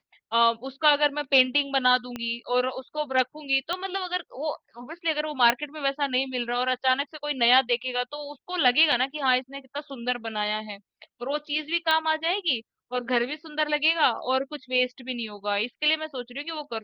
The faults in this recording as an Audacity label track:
2.160000	2.160000	click −18 dBFS
3.730000	3.730000	click −14 dBFS
5.500000	5.500000	click −6 dBFS
8.920000	8.920000	drop-out 3.6 ms
11.910000	11.910000	click −12 dBFS

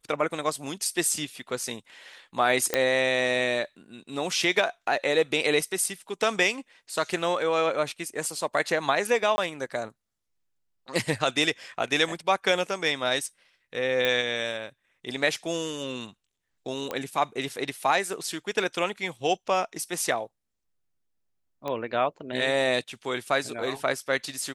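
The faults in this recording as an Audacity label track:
2.740000	2.740000	click −7 dBFS
9.360000	9.380000	drop-out 20 ms
14.050000	14.050000	click −12 dBFS
16.910000	16.910000	click −16 dBFS
21.680000	21.680000	click −19 dBFS

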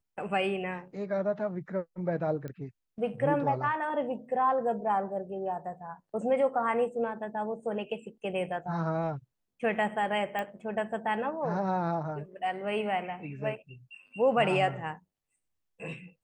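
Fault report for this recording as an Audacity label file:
2.480000	2.480000	click −28 dBFS
10.390000	10.390000	click −21 dBFS

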